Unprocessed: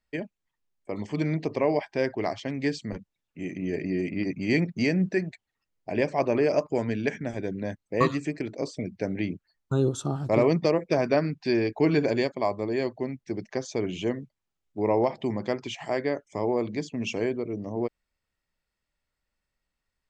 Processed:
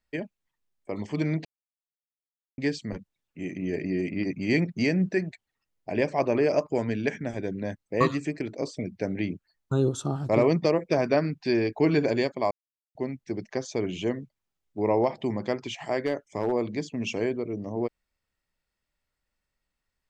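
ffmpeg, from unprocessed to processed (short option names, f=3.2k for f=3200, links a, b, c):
-filter_complex "[0:a]asplit=3[a][b][c];[a]afade=t=out:st=15.99:d=0.02[d];[b]asoftclip=type=hard:threshold=-19dB,afade=t=in:st=15.99:d=0.02,afade=t=out:st=16.51:d=0.02[e];[c]afade=t=in:st=16.51:d=0.02[f];[d][e][f]amix=inputs=3:normalize=0,asplit=5[g][h][i][j][k];[g]atrim=end=1.45,asetpts=PTS-STARTPTS,afade=t=out:st=1.446:d=0.004:c=hsin[l];[h]atrim=start=1.45:end=2.58,asetpts=PTS-STARTPTS,volume=0[m];[i]atrim=start=2.58:end=12.51,asetpts=PTS-STARTPTS,afade=t=in:d=0.004:c=hsin,afade=t=out:st=9.926:d=0.004:c=hsin[n];[j]atrim=start=12.51:end=12.95,asetpts=PTS-STARTPTS,volume=0[o];[k]atrim=start=12.95,asetpts=PTS-STARTPTS,afade=t=in:d=0.004:c=hsin[p];[l][m][n][o][p]concat=n=5:v=0:a=1"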